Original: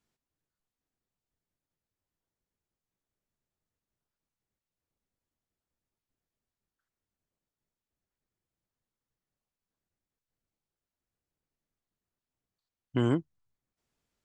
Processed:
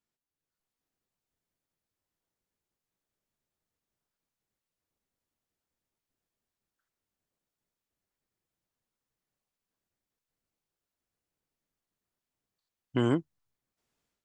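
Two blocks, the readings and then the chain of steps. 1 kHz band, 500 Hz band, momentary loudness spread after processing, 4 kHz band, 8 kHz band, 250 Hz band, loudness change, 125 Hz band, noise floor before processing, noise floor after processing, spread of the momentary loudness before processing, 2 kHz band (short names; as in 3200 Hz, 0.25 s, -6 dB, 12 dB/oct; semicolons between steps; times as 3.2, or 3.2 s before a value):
+1.5 dB, +1.0 dB, 6 LU, +2.0 dB, n/a, +0.5 dB, 0.0 dB, -1.5 dB, under -85 dBFS, under -85 dBFS, 6 LU, +2.0 dB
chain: AGC gain up to 9.5 dB; low shelf 150 Hz -6 dB; gain -7.5 dB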